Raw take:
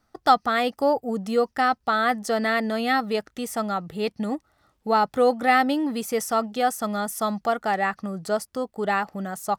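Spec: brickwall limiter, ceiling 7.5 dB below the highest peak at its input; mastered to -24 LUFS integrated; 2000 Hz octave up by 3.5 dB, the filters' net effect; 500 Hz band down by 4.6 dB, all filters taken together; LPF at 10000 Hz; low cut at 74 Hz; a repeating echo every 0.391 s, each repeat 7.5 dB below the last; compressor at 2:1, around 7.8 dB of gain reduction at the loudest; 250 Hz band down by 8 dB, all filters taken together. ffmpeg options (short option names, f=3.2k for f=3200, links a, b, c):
-af "highpass=74,lowpass=10k,equalizer=f=250:t=o:g=-8.5,equalizer=f=500:t=o:g=-4,equalizer=f=2k:t=o:g=4.5,acompressor=threshold=-26dB:ratio=2,alimiter=limit=-19dB:level=0:latency=1,aecho=1:1:391|782|1173|1564|1955:0.422|0.177|0.0744|0.0312|0.0131,volume=6dB"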